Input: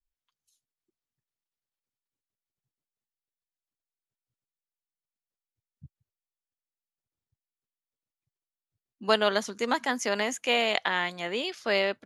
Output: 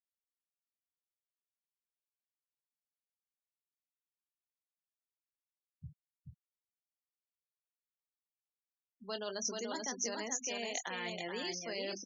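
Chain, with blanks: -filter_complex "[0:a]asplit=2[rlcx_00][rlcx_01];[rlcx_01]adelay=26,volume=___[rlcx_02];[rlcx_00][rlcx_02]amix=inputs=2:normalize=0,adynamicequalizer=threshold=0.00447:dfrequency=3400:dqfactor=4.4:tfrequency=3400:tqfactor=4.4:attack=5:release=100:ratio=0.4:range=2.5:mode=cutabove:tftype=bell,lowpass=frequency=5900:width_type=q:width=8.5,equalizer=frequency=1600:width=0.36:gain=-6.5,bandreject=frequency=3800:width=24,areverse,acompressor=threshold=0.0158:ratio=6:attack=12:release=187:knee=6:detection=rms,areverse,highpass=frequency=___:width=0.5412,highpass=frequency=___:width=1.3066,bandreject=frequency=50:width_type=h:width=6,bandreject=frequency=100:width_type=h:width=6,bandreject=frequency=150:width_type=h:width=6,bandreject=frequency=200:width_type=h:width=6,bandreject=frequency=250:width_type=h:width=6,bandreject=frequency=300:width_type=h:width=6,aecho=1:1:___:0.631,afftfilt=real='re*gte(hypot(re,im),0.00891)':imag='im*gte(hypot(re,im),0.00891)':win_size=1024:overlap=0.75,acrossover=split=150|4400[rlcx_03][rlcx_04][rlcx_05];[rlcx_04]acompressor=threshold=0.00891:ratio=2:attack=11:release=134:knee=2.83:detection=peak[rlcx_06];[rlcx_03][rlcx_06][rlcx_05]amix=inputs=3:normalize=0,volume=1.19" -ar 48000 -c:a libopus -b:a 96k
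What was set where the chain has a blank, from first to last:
0.282, 46, 46, 431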